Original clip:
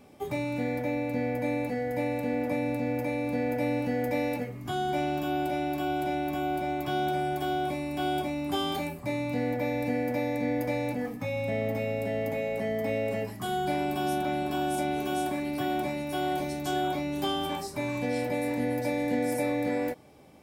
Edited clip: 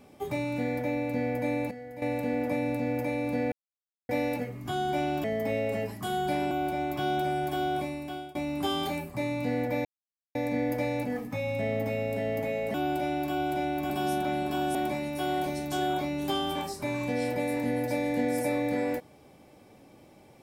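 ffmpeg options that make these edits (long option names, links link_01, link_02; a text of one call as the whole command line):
ffmpeg -i in.wav -filter_complex "[0:a]asplit=13[link_01][link_02][link_03][link_04][link_05][link_06][link_07][link_08][link_09][link_10][link_11][link_12][link_13];[link_01]atrim=end=1.712[link_14];[link_02]atrim=start=1.708:end=2.022,asetpts=PTS-STARTPTS,volume=-11.5dB[link_15];[link_03]atrim=start=2.018:end=3.52,asetpts=PTS-STARTPTS,afade=type=out:start_time=1.498:duration=0.004:curve=hsin[link_16];[link_04]atrim=start=3.52:end=4.09,asetpts=PTS-STARTPTS,volume=0[link_17];[link_05]atrim=start=4.09:end=5.242,asetpts=PTS-STARTPTS,afade=type=in:duration=0.004:curve=hsin[link_18];[link_06]atrim=start=12.628:end=13.902[link_19];[link_07]atrim=start=6.398:end=8.24,asetpts=PTS-STARTPTS,afade=type=out:start_time=1.282:duration=0.56:silence=0.0707946[link_20];[link_08]atrim=start=8.24:end=9.74,asetpts=PTS-STARTPTS,afade=type=in:duration=0.004:curve=hsin:silence=0.0707946,afade=type=out:start_time=1.496:duration=0.004:curve=hsin[link_21];[link_09]atrim=start=9.74:end=10.24,asetpts=PTS-STARTPTS,volume=0[link_22];[link_10]atrim=start=10.24:end=12.632,asetpts=PTS-STARTPTS,afade=type=in:duration=0.004:curve=hsin[link_23];[link_11]atrim=start=5.238:end=6.402[link_24];[link_12]atrim=start=13.898:end=14.752[link_25];[link_13]atrim=start=15.688[link_26];[link_14][link_15]acrossfade=duration=0.004:curve1=hsin:curve2=hsin[link_27];[link_16][link_17][link_18]concat=n=3:v=0:a=1[link_28];[link_27][link_28]acrossfade=duration=0.004:curve1=hsin:curve2=hsin[link_29];[link_29][link_19]acrossfade=duration=0.004:curve1=hsin:curve2=hsin[link_30];[link_20][link_21][link_22][link_23]concat=n=4:v=0:a=1[link_31];[link_30][link_31]acrossfade=duration=0.004:curve1=hsin:curve2=hsin[link_32];[link_32][link_24]acrossfade=duration=0.004:curve1=hsin:curve2=hsin[link_33];[link_33][link_25]acrossfade=duration=0.004:curve1=hsin:curve2=hsin[link_34];[link_34][link_26]acrossfade=duration=0.004:curve1=hsin:curve2=hsin" out.wav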